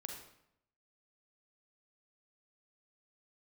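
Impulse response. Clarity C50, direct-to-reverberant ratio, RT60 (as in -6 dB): 3.5 dB, 1.5 dB, 0.75 s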